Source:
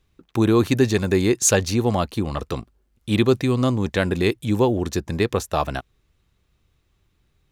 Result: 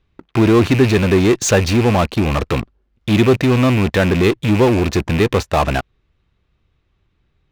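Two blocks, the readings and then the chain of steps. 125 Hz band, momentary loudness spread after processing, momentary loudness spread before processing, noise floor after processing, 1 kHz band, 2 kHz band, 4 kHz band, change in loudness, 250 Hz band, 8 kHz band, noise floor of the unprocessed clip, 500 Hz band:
+7.0 dB, 7 LU, 11 LU, -65 dBFS, +6.5 dB, +7.5 dB, +5.5 dB, +6.0 dB, +6.0 dB, -1.0 dB, -67 dBFS, +5.5 dB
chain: rattling part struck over -27 dBFS, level -24 dBFS; LPF 3600 Hz 12 dB/oct; in parallel at -8 dB: fuzz box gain 33 dB, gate -42 dBFS; on the sum: gain +2 dB

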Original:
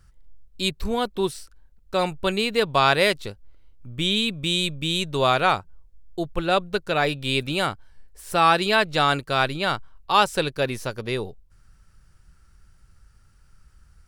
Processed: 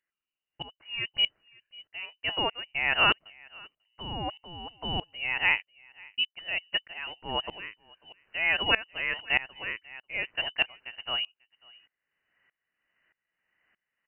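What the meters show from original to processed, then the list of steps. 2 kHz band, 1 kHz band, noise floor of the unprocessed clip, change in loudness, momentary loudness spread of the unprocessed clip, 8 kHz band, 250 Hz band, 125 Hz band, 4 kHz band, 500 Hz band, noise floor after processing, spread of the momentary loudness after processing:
-2.5 dB, -13.0 dB, -56 dBFS, -6.0 dB, 12 LU, under -40 dB, -16.5 dB, -15.0 dB, -3.5 dB, -16.5 dB, under -85 dBFS, 18 LU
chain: Chebyshev high-pass 300 Hz, order 8; outdoor echo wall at 93 m, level -21 dB; inverted band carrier 3300 Hz; dB-ramp tremolo swelling 1.6 Hz, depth 22 dB; gain +1 dB

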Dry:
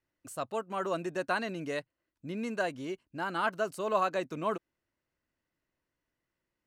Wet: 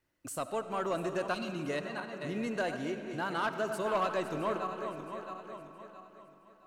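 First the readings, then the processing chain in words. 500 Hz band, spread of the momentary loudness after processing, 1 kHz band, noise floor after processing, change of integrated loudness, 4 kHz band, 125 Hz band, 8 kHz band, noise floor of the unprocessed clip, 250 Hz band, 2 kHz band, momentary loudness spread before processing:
0.0 dB, 15 LU, -1.0 dB, -61 dBFS, -1.0 dB, +0.5 dB, +2.0 dB, +2.5 dB, under -85 dBFS, +1.0 dB, -1.5 dB, 10 LU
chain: regenerating reverse delay 0.334 s, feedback 55%, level -10.5 dB; in parallel at +2.5 dB: compressor, threshold -44 dBFS, peak gain reduction 19.5 dB; on the sum: soft clip -22 dBFS, distortion -17 dB; spectral delete 1.34–1.69, 380–2100 Hz; digital reverb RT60 4 s, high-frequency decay 0.55×, pre-delay 30 ms, DRR 9 dB; gain -2 dB

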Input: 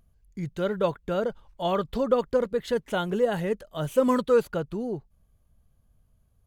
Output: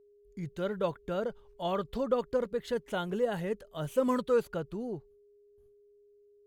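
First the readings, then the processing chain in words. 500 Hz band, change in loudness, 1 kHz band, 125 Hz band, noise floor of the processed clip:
-6.0 dB, -6.0 dB, -6.0 dB, -6.0 dB, -62 dBFS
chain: gate with hold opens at -52 dBFS; whine 410 Hz -53 dBFS; gain -6 dB

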